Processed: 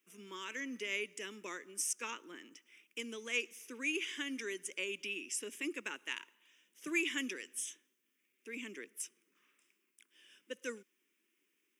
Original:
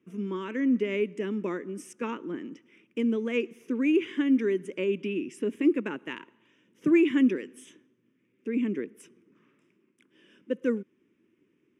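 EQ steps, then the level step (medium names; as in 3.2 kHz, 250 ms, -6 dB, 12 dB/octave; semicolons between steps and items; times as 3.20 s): high-pass 140 Hz; dynamic bell 6 kHz, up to +6 dB, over -59 dBFS, Q 1.2; differentiator; +8.5 dB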